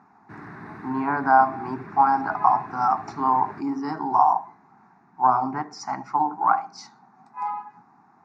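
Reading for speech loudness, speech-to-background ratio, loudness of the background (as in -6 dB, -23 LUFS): -23.0 LUFS, 19.0 dB, -42.0 LUFS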